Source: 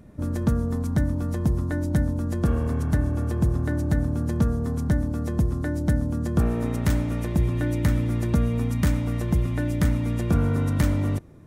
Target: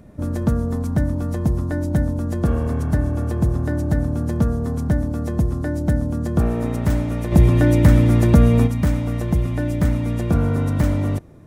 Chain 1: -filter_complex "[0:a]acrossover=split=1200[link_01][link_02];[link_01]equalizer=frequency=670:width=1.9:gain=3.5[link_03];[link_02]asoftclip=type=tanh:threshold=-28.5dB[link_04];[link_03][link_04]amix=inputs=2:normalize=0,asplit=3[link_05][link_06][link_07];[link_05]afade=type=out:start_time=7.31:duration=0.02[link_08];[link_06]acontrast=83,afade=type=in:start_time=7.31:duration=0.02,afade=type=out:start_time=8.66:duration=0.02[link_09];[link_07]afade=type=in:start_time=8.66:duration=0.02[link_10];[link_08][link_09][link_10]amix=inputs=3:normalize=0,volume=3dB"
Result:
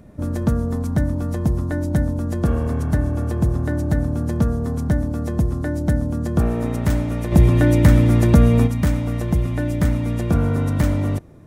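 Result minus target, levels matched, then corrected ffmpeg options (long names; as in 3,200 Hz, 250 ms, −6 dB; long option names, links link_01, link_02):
soft clipping: distortion −5 dB
-filter_complex "[0:a]acrossover=split=1200[link_01][link_02];[link_01]equalizer=frequency=670:width=1.9:gain=3.5[link_03];[link_02]asoftclip=type=tanh:threshold=-35.5dB[link_04];[link_03][link_04]amix=inputs=2:normalize=0,asplit=3[link_05][link_06][link_07];[link_05]afade=type=out:start_time=7.31:duration=0.02[link_08];[link_06]acontrast=83,afade=type=in:start_time=7.31:duration=0.02,afade=type=out:start_time=8.66:duration=0.02[link_09];[link_07]afade=type=in:start_time=8.66:duration=0.02[link_10];[link_08][link_09][link_10]amix=inputs=3:normalize=0,volume=3dB"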